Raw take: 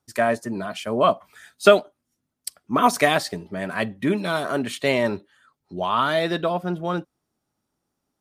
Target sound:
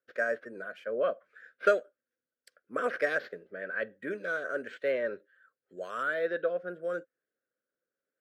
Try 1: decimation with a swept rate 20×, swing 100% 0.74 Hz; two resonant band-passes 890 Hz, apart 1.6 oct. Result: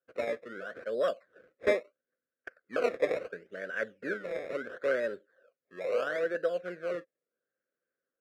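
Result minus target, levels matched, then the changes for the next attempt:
decimation with a swept rate: distortion +16 dB
change: decimation with a swept rate 4×, swing 100% 0.74 Hz

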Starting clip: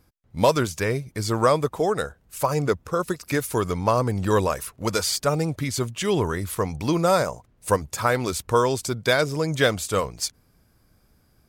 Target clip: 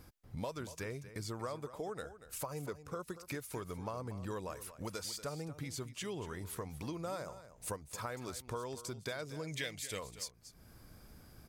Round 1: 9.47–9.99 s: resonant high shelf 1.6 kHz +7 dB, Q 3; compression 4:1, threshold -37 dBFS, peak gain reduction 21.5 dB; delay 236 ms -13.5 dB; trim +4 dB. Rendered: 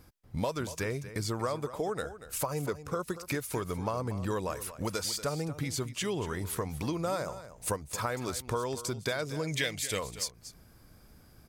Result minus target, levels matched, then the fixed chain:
compression: peak gain reduction -8.5 dB
9.47–9.99 s: resonant high shelf 1.6 kHz +7 dB, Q 3; compression 4:1, threshold -48.5 dBFS, peak gain reduction 30 dB; delay 236 ms -13.5 dB; trim +4 dB

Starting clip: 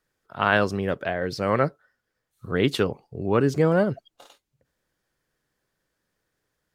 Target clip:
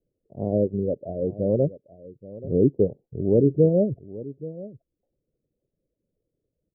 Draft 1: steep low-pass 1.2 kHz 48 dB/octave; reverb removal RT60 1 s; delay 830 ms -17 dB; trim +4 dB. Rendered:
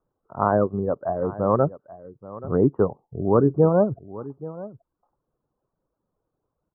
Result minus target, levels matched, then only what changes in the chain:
1 kHz band +18.0 dB
change: steep low-pass 580 Hz 48 dB/octave

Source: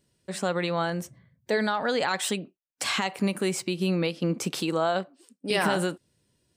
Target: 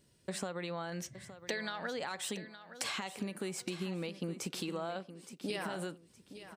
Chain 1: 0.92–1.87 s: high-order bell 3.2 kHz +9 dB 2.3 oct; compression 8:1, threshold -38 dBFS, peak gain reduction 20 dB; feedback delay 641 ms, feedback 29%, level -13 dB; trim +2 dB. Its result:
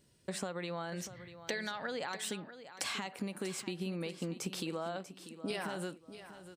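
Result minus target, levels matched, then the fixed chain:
echo 226 ms early
0.92–1.87 s: high-order bell 3.2 kHz +9 dB 2.3 oct; compression 8:1, threshold -38 dBFS, peak gain reduction 20 dB; feedback delay 867 ms, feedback 29%, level -13 dB; trim +2 dB

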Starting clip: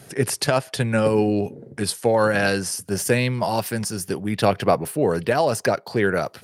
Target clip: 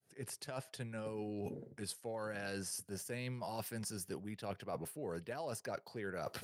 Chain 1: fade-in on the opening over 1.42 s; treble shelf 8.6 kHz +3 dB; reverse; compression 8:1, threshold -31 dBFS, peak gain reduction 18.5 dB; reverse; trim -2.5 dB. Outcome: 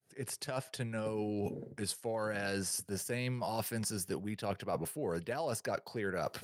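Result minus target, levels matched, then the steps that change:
compression: peak gain reduction -6 dB
change: compression 8:1, threshold -38 dBFS, peak gain reduction 24.5 dB

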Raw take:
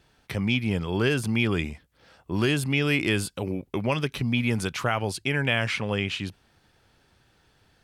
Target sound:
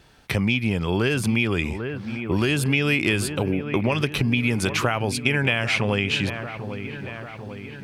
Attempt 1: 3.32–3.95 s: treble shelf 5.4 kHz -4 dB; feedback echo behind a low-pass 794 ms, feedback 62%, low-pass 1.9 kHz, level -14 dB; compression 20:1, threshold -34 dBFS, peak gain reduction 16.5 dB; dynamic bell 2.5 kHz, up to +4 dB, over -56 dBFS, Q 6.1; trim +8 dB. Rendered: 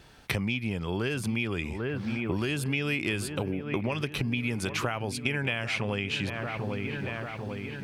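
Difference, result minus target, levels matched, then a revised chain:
compression: peak gain reduction +8 dB
3.32–3.95 s: treble shelf 5.4 kHz -4 dB; feedback echo behind a low-pass 794 ms, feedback 62%, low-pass 1.9 kHz, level -14 dB; compression 20:1, threshold -25.5 dBFS, peak gain reduction 8.5 dB; dynamic bell 2.5 kHz, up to +4 dB, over -56 dBFS, Q 6.1; trim +8 dB

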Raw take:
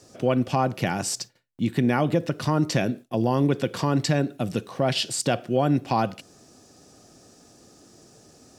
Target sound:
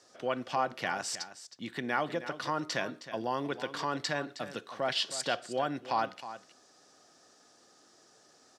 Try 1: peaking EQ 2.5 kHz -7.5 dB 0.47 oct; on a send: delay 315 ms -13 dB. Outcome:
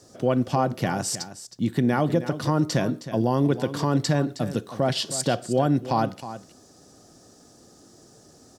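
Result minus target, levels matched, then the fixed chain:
2 kHz band -9.0 dB
band-pass filter 2.1 kHz, Q 0.76; peaking EQ 2.5 kHz -7.5 dB 0.47 oct; on a send: delay 315 ms -13 dB

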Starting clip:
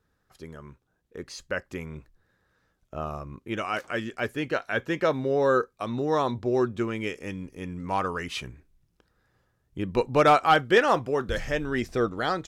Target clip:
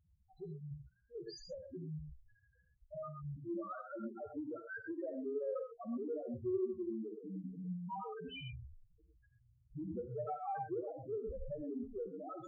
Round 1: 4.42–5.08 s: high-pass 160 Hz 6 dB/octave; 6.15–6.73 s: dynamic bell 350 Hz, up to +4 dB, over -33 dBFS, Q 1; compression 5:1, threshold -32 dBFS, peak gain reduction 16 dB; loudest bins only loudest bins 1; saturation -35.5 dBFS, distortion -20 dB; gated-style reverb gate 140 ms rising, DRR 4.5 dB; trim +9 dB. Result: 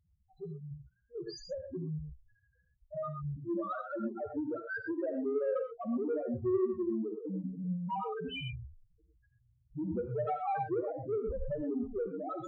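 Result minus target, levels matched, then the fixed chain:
compression: peak gain reduction -8 dB
4.42–5.08 s: high-pass 160 Hz 6 dB/octave; 6.15–6.73 s: dynamic bell 350 Hz, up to +4 dB, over -33 dBFS, Q 1; compression 5:1, threshold -42 dBFS, peak gain reduction 24 dB; loudest bins only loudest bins 1; saturation -35.5 dBFS, distortion -34 dB; gated-style reverb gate 140 ms rising, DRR 4.5 dB; trim +9 dB

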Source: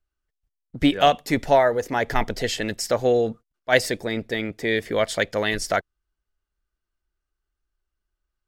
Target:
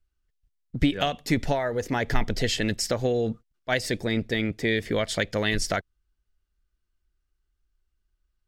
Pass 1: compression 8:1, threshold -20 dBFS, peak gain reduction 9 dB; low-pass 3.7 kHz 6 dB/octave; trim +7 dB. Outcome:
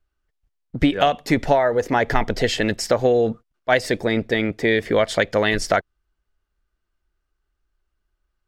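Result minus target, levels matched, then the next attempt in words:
1 kHz band +3.5 dB
compression 8:1, threshold -20 dBFS, peak gain reduction 9 dB; low-pass 3.7 kHz 6 dB/octave; peaking EQ 790 Hz -10 dB 3 oct; trim +7 dB

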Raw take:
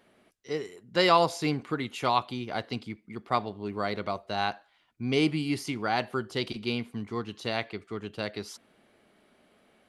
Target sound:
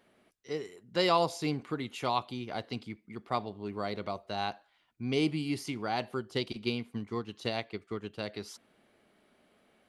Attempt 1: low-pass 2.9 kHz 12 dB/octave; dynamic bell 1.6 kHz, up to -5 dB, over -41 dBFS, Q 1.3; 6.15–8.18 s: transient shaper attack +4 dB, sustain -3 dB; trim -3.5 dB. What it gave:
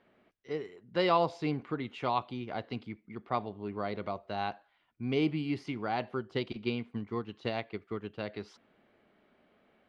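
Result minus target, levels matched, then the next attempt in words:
4 kHz band -4.5 dB
dynamic bell 1.6 kHz, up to -5 dB, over -41 dBFS, Q 1.3; 6.15–8.18 s: transient shaper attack +4 dB, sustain -3 dB; trim -3.5 dB

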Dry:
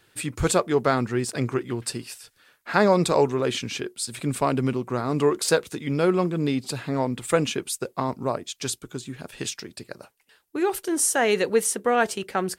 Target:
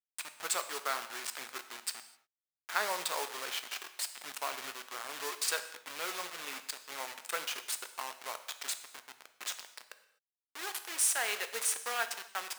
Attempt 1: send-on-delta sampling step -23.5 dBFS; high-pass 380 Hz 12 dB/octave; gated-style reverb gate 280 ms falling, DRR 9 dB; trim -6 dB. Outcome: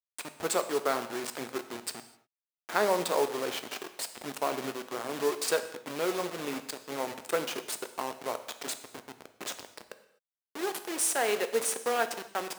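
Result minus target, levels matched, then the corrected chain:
500 Hz band +10.0 dB
send-on-delta sampling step -23.5 dBFS; high-pass 1.2 kHz 12 dB/octave; gated-style reverb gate 280 ms falling, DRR 9 dB; trim -6 dB

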